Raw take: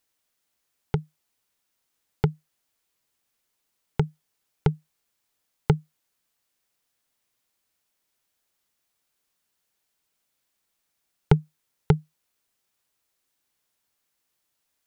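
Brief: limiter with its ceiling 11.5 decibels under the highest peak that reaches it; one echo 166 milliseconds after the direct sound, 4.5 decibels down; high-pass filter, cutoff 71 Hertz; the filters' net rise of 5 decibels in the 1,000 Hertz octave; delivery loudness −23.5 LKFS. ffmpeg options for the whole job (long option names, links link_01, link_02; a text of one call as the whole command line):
ffmpeg -i in.wav -af "highpass=71,equalizer=frequency=1000:width_type=o:gain=6.5,alimiter=limit=-13.5dB:level=0:latency=1,aecho=1:1:166:0.596,volume=10.5dB" out.wav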